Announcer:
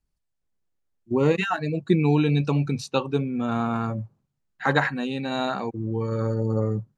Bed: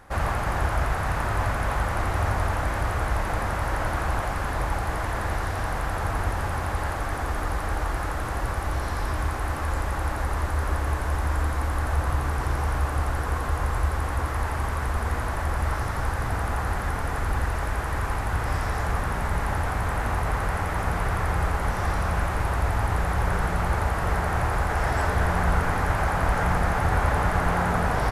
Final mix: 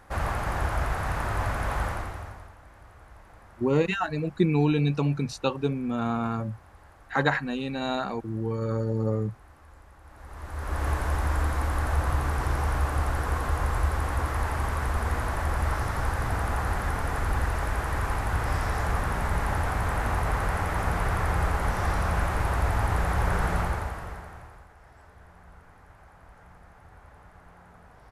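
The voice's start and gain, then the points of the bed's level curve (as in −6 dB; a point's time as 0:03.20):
2.50 s, −2.5 dB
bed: 0:01.87 −3 dB
0:02.56 −25 dB
0:10.02 −25 dB
0:10.85 −1 dB
0:23.58 −1 dB
0:24.75 −29 dB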